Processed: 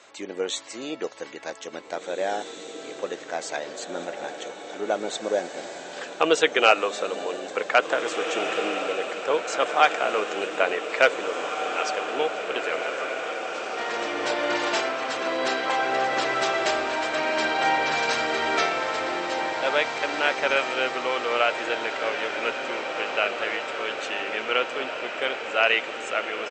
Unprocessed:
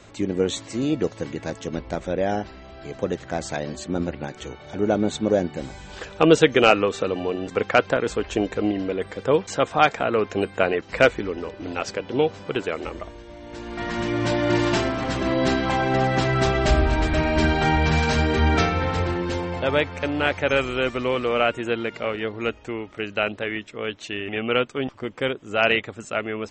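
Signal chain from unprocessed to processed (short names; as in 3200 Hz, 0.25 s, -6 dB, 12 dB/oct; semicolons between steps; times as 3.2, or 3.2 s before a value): HPF 580 Hz 12 dB/oct; on a send: diffused feedback echo 1.999 s, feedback 68%, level -7 dB; on the sum: downsampling 32000 Hz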